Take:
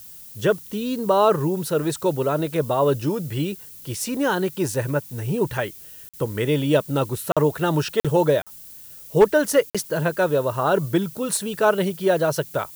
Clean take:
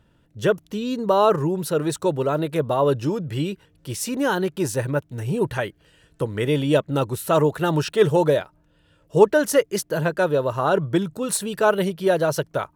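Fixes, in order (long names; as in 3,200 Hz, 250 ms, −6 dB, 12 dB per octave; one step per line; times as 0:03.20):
clipped peaks rebuilt −6.5 dBFS
repair the gap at 0:06.09/0:07.32/0:08.00/0:08.42/0:09.70, 46 ms
noise reduction from a noise print 17 dB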